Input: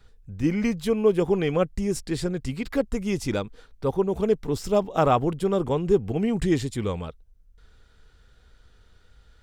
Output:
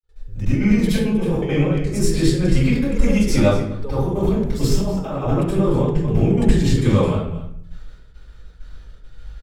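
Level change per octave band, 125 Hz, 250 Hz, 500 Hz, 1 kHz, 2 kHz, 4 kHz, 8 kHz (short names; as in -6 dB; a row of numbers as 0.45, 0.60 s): +11.5, +7.5, +1.5, -1.0, +6.0, +7.0, +7.5 dB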